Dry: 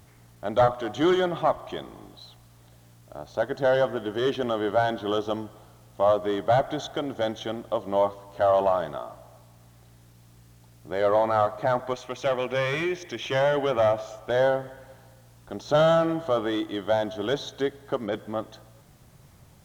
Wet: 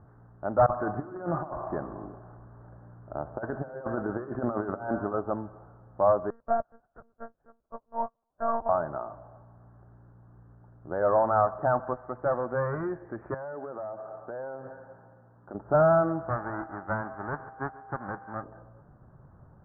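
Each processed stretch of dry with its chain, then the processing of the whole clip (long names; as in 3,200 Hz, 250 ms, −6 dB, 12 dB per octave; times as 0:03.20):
0:00.66–0:05.14: compressor whose output falls as the input rises −29 dBFS, ratio −0.5 + bucket-brigade delay 63 ms, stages 1,024, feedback 79%, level −19.5 dB
0:06.30–0:08.69: parametric band 290 Hz −8.5 dB 1.9 octaves + one-pitch LPC vocoder at 8 kHz 230 Hz + expander for the loud parts 2.5 to 1, over −42 dBFS
0:13.34–0:15.55: high-pass filter 140 Hz + downward compressor, threshold −35 dBFS
0:16.28–0:18.42: spectral envelope flattened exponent 0.1 + steady tone 790 Hz −46 dBFS + feedback echo with a high-pass in the loop 141 ms, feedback 68%, high-pass 210 Hz, level −20.5 dB
whole clip: Butterworth low-pass 1,600 Hz 72 dB per octave; dynamic equaliser 390 Hz, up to −5 dB, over −37 dBFS, Q 1.7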